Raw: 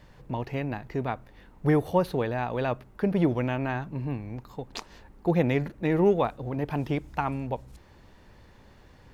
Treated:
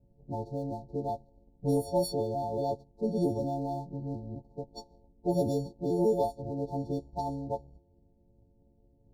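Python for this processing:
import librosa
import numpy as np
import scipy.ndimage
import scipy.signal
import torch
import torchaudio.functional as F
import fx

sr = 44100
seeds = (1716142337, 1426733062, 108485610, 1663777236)

y = fx.freq_snap(x, sr, grid_st=4)
y = fx.env_lowpass(y, sr, base_hz=350.0, full_db=-19.0)
y = fx.dynamic_eq(y, sr, hz=160.0, q=0.91, threshold_db=-36.0, ratio=4.0, max_db=-4)
y = fx.leveller(y, sr, passes=1)
y = scipy.signal.sosfilt(scipy.signal.cheby1(5, 1.0, [840.0, 4000.0], 'bandstop', fs=sr, output='sos'), y)
y = y * librosa.db_to_amplitude(-5.0)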